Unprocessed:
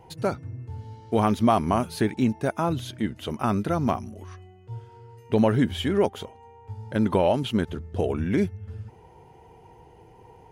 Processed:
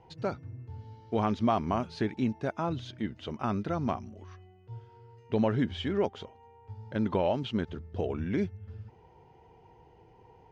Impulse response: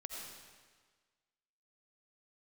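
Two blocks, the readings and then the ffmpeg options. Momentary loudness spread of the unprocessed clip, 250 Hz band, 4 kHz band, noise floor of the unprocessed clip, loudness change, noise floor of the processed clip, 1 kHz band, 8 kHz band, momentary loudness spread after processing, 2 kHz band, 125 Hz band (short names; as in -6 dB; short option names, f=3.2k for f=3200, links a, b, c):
19 LU, -6.5 dB, -6.5 dB, -52 dBFS, -6.5 dB, -58 dBFS, -6.5 dB, under -10 dB, 19 LU, -6.5 dB, -6.5 dB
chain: -af "lowpass=f=5.7k:w=0.5412,lowpass=f=5.7k:w=1.3066,volume=-6.5dB"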